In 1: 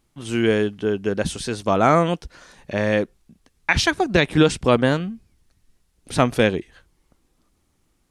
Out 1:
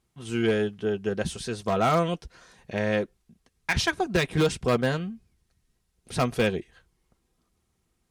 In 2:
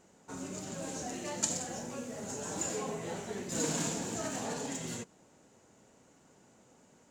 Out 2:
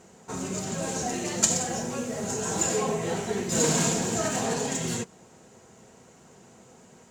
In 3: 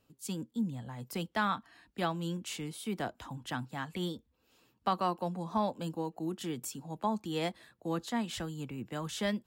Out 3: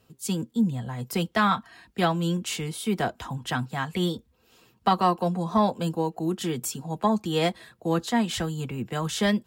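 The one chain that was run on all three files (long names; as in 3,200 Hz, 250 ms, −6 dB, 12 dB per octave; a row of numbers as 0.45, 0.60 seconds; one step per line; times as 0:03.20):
harmonic generator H 6 −22 dB, 8 −32 dB, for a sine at −3.5 dBFS
wave folding −7.5 dBFS
notch comb filter 290 Hz
loudness normalisation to −27 LKFS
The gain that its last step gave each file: −5.0, +11.0, +10.5 decibels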